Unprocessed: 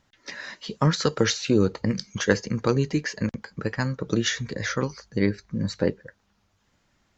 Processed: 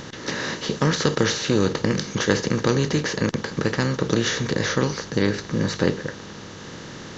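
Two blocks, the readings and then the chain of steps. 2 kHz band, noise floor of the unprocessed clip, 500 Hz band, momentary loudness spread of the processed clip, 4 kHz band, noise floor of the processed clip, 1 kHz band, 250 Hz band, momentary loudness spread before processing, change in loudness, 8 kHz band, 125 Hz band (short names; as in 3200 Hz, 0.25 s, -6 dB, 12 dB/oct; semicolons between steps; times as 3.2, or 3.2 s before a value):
+4.0 dB, -69 dBFS, +3.0 dB, 14 LU, +4.0 dB, -39 dBFS, +4.5 dB, +2.5 dB, 11 LU, +2.5 dB, n/a, +2.5 dB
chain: per-bin compression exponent 0.4; gain -3 dB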